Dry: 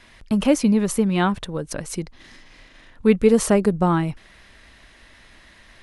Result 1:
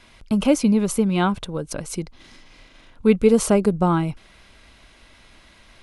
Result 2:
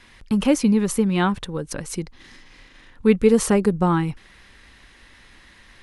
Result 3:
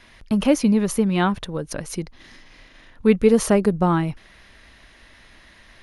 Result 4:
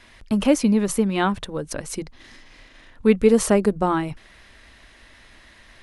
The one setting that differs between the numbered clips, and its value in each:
notch, frequency: 1800, 640, 7800, 170 Hz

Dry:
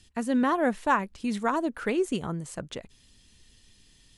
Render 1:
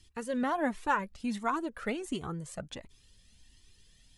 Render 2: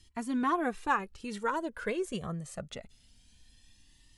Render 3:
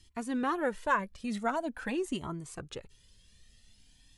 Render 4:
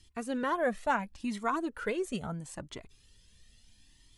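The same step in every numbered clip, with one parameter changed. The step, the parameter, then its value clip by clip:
cascading flanger, rate: 1.4, 0.23, 0.45, 0.74 Hz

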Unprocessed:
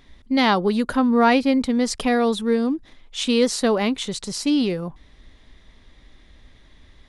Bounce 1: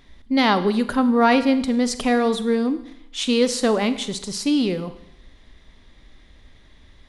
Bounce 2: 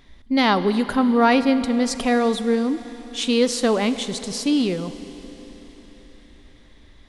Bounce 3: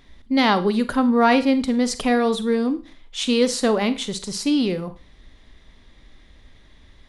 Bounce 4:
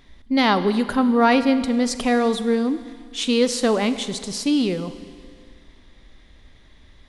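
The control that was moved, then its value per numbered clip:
Schroeder reverb, RT60: 0.82, 4.5, 0.35, 2.1 s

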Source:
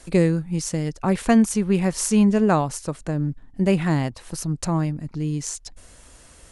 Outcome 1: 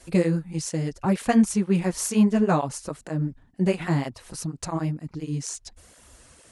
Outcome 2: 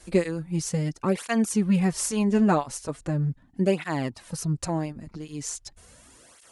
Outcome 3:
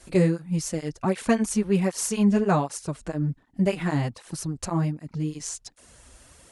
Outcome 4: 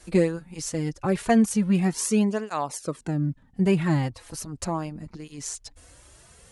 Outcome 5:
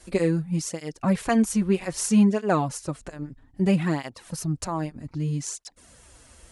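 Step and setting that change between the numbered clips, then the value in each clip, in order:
tape flanging out of phase, nulls at: 2.1, 0.39, 1.3, 0.2, 0.62 Hz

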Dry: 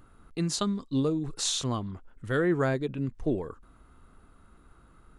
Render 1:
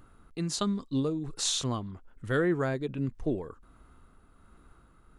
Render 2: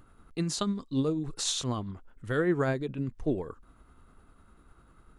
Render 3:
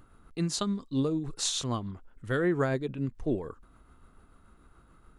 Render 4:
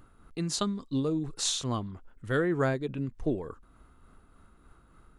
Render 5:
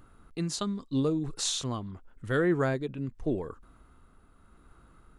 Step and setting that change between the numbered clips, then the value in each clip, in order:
tremolo, rate: 1.3, 10, 6.9, 3.4, 0.83 Hz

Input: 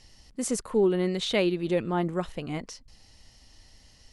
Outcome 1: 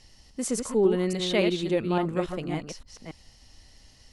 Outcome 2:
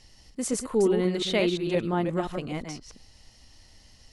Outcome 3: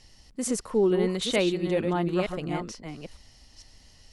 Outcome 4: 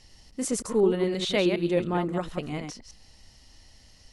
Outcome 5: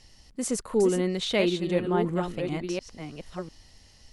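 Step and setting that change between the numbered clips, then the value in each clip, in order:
reverse delay, time: 0.283, 0.175, 0.453, 0.104, 0.698 s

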